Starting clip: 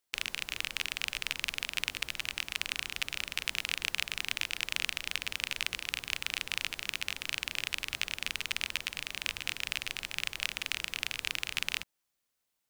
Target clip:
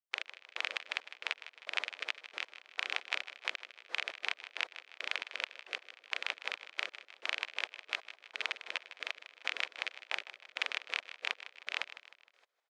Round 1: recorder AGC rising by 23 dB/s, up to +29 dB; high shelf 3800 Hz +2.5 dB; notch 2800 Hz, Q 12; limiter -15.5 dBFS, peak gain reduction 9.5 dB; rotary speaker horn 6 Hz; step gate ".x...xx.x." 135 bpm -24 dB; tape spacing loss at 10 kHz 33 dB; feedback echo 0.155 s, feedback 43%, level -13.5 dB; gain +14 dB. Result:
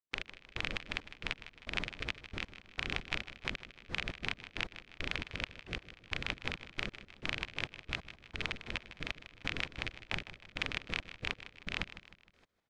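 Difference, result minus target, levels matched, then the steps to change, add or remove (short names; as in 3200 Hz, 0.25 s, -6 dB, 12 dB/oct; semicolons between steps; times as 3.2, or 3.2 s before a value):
500 Hz band +4.0 dB
add after recorder AGC: HPF 510 Hz 24 dB/oct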